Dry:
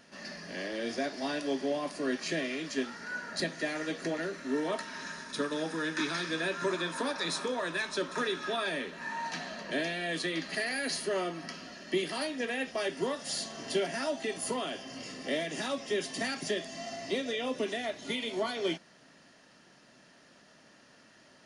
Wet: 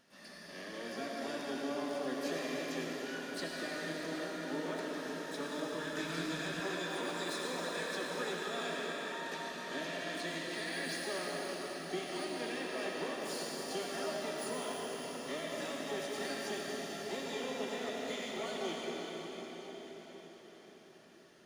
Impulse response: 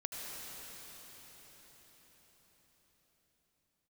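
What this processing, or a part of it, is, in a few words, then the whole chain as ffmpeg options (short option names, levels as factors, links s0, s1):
shimmer-style reverb: -filter_complex "[0:a]asplit=2[s0][s1];[s1]asetrate=88200,aresample=44100,atempo=0.5,volume=0.355[s2];[s0][s2]amix=inputs=2:normalize=0[s3];[1:a]atrim=start_sample=2205[s4];[s3][s4]afir=irnorm=-1:irlink=0,asettb=1/sr,asplit=3[s5][s6][s7];[s5]atrim=end=5.574[s8];[s6]atrim=start=5.57:end=6.6,asetpts=PTS-STARTPTS,afade=t=in:d=0.004:c=qsin,afade=t=out:st=1.026:d=0.004:c=qsin,asubboost=boost=7:cutoff=230[s9];[s7]atrim=start=6.596[s10];[s8][s9]acrossfade=d=0.004:c1=hsin:c2=qsin[s11];[s11][s10]acrossfade=d=0.004:c1=qsin:c2=hsin,volume=0.447"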